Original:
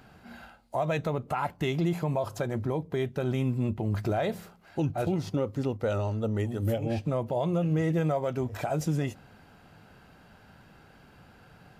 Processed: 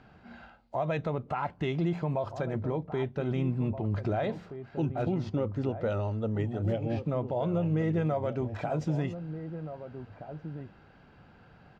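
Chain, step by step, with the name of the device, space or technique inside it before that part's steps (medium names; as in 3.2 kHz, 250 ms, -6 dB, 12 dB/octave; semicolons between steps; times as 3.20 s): shout across a valley (distance through air 160 m; echo from a far wall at 270 m, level -10 dB); trim -1.5 dB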